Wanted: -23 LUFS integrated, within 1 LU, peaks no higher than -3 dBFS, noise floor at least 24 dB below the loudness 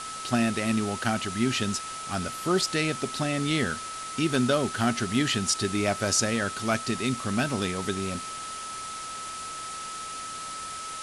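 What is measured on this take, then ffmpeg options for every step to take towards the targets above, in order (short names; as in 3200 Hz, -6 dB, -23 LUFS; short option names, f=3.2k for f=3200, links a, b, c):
steady tone 1300 Hz; tone level -36 dBFS; noise floor -37 dBFS; noise floor target -52 dBFS; loudness -28.0 LUFS; peak -11.0 dBFS; loudness target -23.0 LUFS
-> -af "bandreject=f=1.3k:w=30"
-af "afftdn=nr=15:nf=-37"
-af "volume=5dB"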